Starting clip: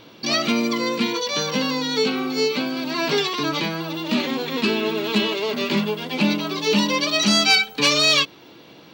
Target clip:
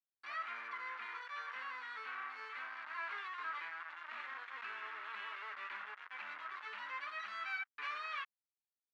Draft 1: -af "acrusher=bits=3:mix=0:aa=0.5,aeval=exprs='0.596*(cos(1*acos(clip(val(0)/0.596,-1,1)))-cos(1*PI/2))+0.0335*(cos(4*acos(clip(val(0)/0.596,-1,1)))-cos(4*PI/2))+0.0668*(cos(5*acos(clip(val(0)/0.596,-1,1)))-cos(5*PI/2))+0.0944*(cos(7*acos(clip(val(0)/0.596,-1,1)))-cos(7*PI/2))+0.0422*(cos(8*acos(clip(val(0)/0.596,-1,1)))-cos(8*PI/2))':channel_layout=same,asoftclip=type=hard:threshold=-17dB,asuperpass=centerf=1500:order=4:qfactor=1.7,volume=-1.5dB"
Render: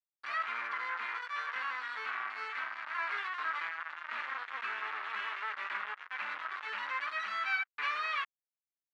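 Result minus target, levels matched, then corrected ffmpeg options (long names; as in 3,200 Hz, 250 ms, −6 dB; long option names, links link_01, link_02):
hard clipping: distortion −5 dB
-af "acrusher=bits=3:mix=0:aa=0.5,aeval=exprs='0.596*(cos(1*acos(clip(val(0)/0.596,-1,1)))-cos(1*PI/2))+0.0335*(cos(4*acos(clip(val(0)/0.596,-1,1)))-cos(4*PI/2))+0.0668*(cos(5*acos(clip(val(0)/0.596,-1,1)))-cos(5*PI/2))+0.0944*(cos(7*acos(clip(val(0)/0.596,-1,1)))-cos(7*PI/2))+0.0422*(cos(8*acos(clip(val(0)/0.596,-1,1)))-cos(8*PI/2))':channel_layout=same,asoftclip=type=hard:threshold=-27dB,asuperpass=centerf=1500:order=4:qfactor=1.7,volume=-1.5dB"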